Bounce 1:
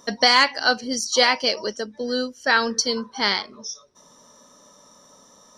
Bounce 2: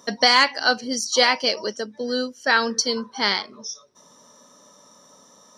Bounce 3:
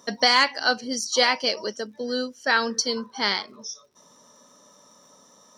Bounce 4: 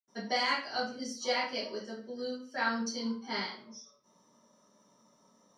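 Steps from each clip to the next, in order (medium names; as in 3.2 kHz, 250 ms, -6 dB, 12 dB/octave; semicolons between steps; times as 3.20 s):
high-pass 100 Hz 12 dB/octave
crackle 110 per s -52 dBFS; trim -2.5 dB
reverberation RT60 0.45 s, pre-delay 76 ms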